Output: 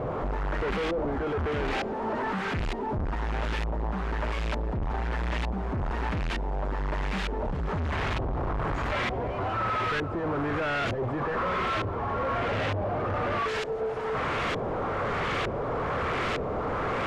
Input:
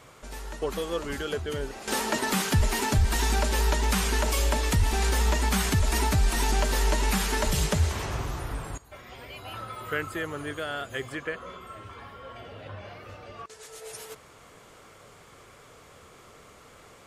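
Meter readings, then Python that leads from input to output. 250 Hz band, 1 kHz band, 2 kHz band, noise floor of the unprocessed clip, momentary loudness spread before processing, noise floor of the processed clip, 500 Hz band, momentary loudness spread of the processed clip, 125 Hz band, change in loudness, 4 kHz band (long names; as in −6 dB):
+1.0 dB, +3.5 dB, +0.5 dB, −52 dBFS, 18 LU, −32 dBFS, +3.5 dB, 3 LU, −2.5 dB, −2.5 dB, −5.5 dB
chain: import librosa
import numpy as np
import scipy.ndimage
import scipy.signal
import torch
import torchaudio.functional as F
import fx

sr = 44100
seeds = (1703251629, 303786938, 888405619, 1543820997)

y = np.sign(x) * np.sqrt(np.mean(np.square(x)))
y = fx.filter_lfo_lowpass(y, sr, shape='saw_up', hz=1.1, low_hz=590.0, high_hz=3000.0, q=1.1)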